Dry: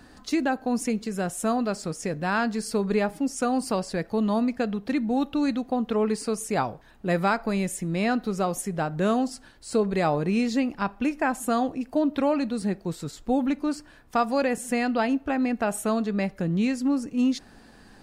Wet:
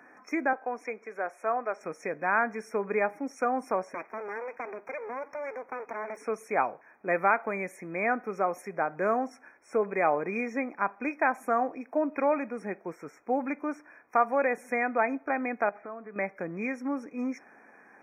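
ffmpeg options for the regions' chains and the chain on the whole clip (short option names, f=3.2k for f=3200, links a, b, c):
-filter_complex "[0:a]asettb=1/sr,asplit=3[a][b][c];[a]atrim=end=0.534[d];[b]atrim=start=0.53:end=1.81,asetpts=PTS-STARTPTS,afade=t=in:d=0.004:c=qsin,afade=t=out:st=1.276:d=0.004:c=qsin,highpass=430,aemphasis=mode=reproduction:type=50kf[e];[c]atrim=start=1.806[f];[d][e]acrossfade=d=0.004:c1=hsin:c2=qsin[g];[g][f]acrossfade=d=0.004:c1=qsin:c2=hsin,asettb=1/sr,asplit=3[h][i][j];[h]atrim=end=3.944[k];[i]atrim=start=3.94:end=6.17,asetpts=PTS-STARTPTS,afade=t=in:d=0.004:c=qsin,afade=t=out:st=2.226:d=0.004:c=qsin,acompressor=threshold=-26dB:ratio=4:attack=3.2:release=140:knee=1:detection=peak,aeval=exprs='abs(val(0))':c=same[l];[j]atrim=start=6.166[m];[k][l]acrossfade=d=0.004:c1=hsin:c2=qsin[n];[n][m]acrossfade=d=0.004:c1=qsin:c2=hsin,asettb=1/sr,asplit=3[o][p][q];[o]atrim=end=15.694[r];[p]atrim=start=15.69:end=16.16,asetpts=PTS-STARTPTS,afade=t=in:d=0.004:c=qsin,afade=t=out:st=0.466:d=0.004:c=qsin,lowpass=f=2.4k:w=0.5412,lowpass=f=2.4k:w=1.3066,acompressor=threshold=-32dB:ratio=12:attack=3.2:release=140:knee=1:detection=peak[s];[q]atrim=start=16.156[t];[r][s]acrossfade=d=0.004:c1=hsin:c2=qsin[u];[u][t]acrossfade=d=0.004:c1=qsin:c2=hsin,highpass=440,afftfilt=real='re*(1-between(b*sr/4096,2500,5400))':imag='im*(1-between(b*sr/4096,2500,5400))':win_size=4096:overlap=0.75,highshelf=f=5.3k:t=q:w=3:g=-14"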